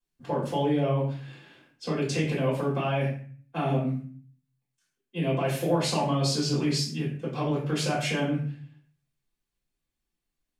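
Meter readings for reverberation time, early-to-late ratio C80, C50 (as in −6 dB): 0.45 s, 9.0 dB, 4.5 dB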